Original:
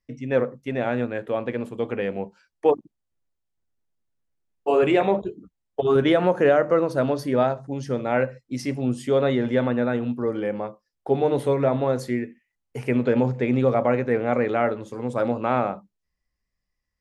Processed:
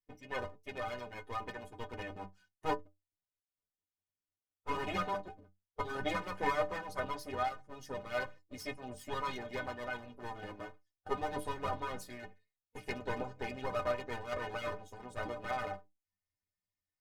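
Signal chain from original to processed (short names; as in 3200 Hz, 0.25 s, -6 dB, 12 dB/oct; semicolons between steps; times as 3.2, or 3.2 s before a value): minimum comb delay 7.9 ms; harmonic-percussive split harmonic -12 dB; metallic resonator 90 Hz, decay 0.28 s, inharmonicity 0.03; gain +1.5 dB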